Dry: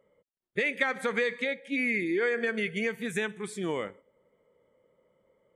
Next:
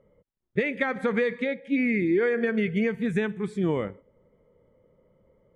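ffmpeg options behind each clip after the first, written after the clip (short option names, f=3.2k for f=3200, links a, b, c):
-af "aemphasis=mode=reproduction:type=riaa,volume=1.5dB"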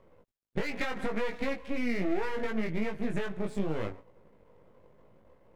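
-af "acompressor=threshold=-31dB:ratio=6,aeval=exprs='max(val(0),0)':c=same,flanger=delay=18:depth=3.1:speed=0.75,volume=9dB"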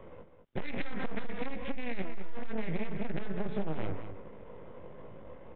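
-filter_complex "[0:a]acrossover=split=200[a][b];[b]acompressor=threshold=-40dB:ratio=8[c];[a][c]amix=inputs=2:normalize=0,aresample=8000,asoftclip=type=tanh:threshold=-38.5dB,aresample=44100,asplit=2[d][e];[e]adelay=204.1,volume=-9dB,highshelf=f=4k:g=-4.59[f];[d][f]amix=inputs=2:normalize=0,volume=11dB"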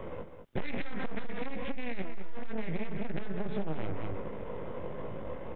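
-af "alimiter=level_in=10.5dB:limit=-24dB:level=0:latency=1,volume=-10.5dB,volume=9dB"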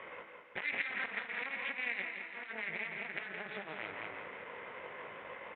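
-af "bandpass=f=2.1k:t=q:w=2.1:csg=0,aecho=1:1:168|336|504|672|840|1008|1176:0.422|0.236|0.132|0.0741|0.0415|0.0232|0.013,volume=8.5dB"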